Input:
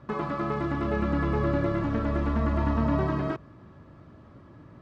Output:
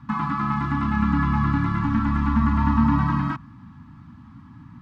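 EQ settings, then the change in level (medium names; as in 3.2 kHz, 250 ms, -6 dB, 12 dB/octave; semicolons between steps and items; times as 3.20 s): dynamic bell 1.2 kHz, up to +4 dB, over -41 dBFS, Q 1; Chebyshev band-stop 260–870 Hz, order 3; peaking EQ 280 Hz +6.5 dB 2.8 oct; +3.0 dB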